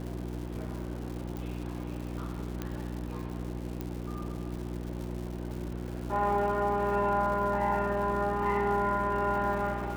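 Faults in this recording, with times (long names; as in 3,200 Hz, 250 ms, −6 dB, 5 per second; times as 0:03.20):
surface crackle 250 per second −39 dBFS
mains hum 60 Hz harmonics 6 −37 dBFS
0:01.37: click
0:02.62: click −20 dBFS
0:03.81: click −22 dBFS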